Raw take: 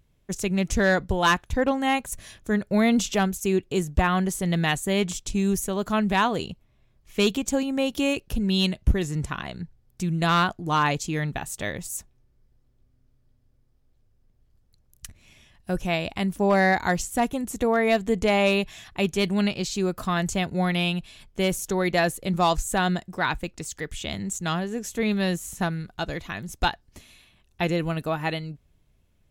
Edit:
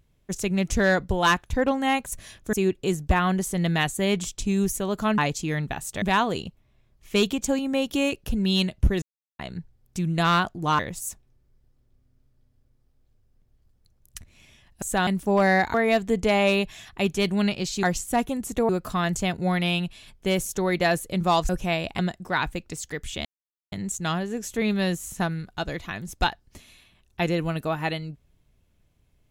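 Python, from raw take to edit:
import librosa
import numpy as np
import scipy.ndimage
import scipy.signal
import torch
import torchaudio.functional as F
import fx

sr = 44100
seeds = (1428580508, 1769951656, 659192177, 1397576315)

y = fx.edit(x, sr, fx.cut(start_s=2.53, length_s=0.88),
    fx.silence(start_s=9.06, length_s=0.37),
    fx.move(start_s=10.83, length_s=0.84, to_s=6.06),
    fx.swap(start_s=15.7, length_s=0.5, other_s=22.62, other_length_s=0.25),
    fx.move(start_s=16.87, length_s=0.86, to_s=19.82),
    fx.insert_silence(at_s=24.13, length_s=0.47), tone=tone)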